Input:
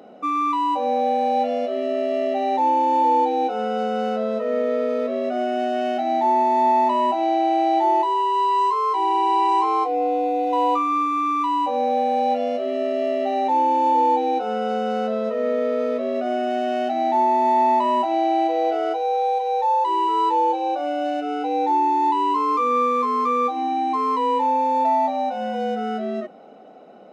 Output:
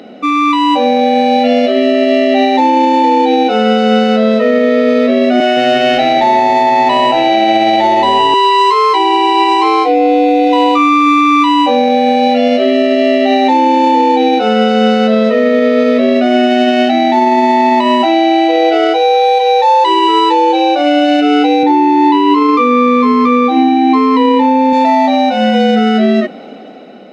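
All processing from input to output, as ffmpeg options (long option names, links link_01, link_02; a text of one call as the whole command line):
ffmpeg -i in.wav -filter_complex "[0:a]asettb=1/sr,asplit=3[link_01][link_02][link_03];[link_01]atrim=end=5.404[link_04];[link_02]atrim=start=5.4:end=8.34,asetpts=PTS-STARTPTS,afade=type=in:duration=0.004:curve=qsin,afade=type=out:start_time=2.936:duration=0.004:curve=qsin,highpass=420,asplit=5[link_05][link_06][link_07][link_08][link_09];[link_06]adelay=164,afreqshift=-110,volume=-11dB[link_10];[link_07]adelay=328,afreqshift=-220,volume=-19.9dB[link_11];[link_08]adelay=492,afreqshift=-330,volume=-28.7dB[link_12];[link_09]adelay=656,afreqshift=-440,volume=-37.6dB[link_13];[link_05][link_10][link_11][link_12][link_13]amix=inputs=5:normalize=0,atrim=end_sample=129654[link_14];[link_03]atrim=start=8.336[link_15];[link_04][link_14]acrossfade=duration=0.004:curve1=hsin:curve2=qsin[link_16];[link_16][link_15]acrossfade=duration=0.004:curve1=qsin:curve2=hsin,asettb=1/sr,asplit=3[link_17][link_18][link_19];[link_17]atrim=end=21.634[link_20];[link_18]atrim=start=21.63:end=24.73,asetpts=PTS-STARTPTS,afade=type=in:duration=0.004:curve=qsin,afade=type=out:start_time=3.096:duration=0.004:curve=qsin,highpass=frequency=150:width=0.5412,highpass=frequency=150:width=1.3066,aemphasis=mode=reproduction:type=bsi[link_21];[link_19]atrim=start=24.726[link_22];[link_20][link_21]acrossfade=duration=0.004:curve1=hsin:curve2=qsin[link_23];[link_23][link_22]acrossfade=duration=0.004:curve1=qsin:curve2=hsin,equalizer=frequency=250:width_type=o:width=1:gain=7,equalizer=frequency=1000:width_type=o:width=1:gain=-5,equalizer=frequency=2000:width_type=o:width=1:gain=8,equalizer=frequency=4000:width_type=o:width=1:gain=9,dynaudnorm=framelen=200:gausssize=7:maxgain=5dB,alimiter=level_in=10dB:limit=-1dB:release=50:level=0:latency=1,volume=-1dB" out.wav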